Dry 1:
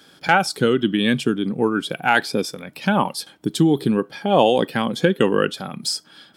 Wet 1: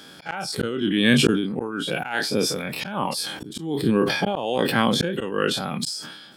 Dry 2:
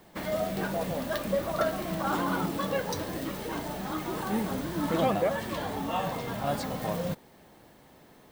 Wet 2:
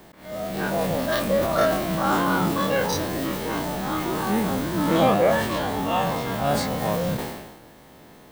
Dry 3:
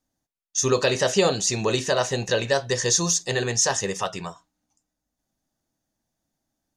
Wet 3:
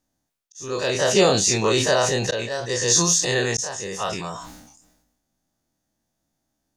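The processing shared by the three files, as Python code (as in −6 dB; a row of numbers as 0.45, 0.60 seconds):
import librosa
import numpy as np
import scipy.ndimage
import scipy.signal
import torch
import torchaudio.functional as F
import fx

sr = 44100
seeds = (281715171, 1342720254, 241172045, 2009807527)

y = fx.spec_dilate(x, sr, span_ms=60)
y = fx.auto_swell(y, sr, attack_ms=658.0)
y = fx.sustainer(y, sr, db_per_s=50.0)
y = y * 10.0 ** (-24 / 20.0) / np.sqrt(np.mean(np.square(y)))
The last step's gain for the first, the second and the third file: +1.5, +3.5, −1.0 decibels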